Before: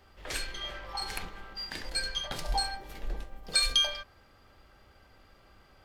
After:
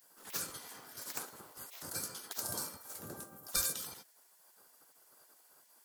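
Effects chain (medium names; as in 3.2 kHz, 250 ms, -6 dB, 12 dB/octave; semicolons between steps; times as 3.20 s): FFT filter 150 Hz 0 dB, 790 Hz -12 dB, 1.4 kHz -4 dB, 2 kHz -20 dB, 3.1 kHz -18 dB, 9.7 kHz +12 dB; spectral gate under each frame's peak -25 dB weak; trim +7 dB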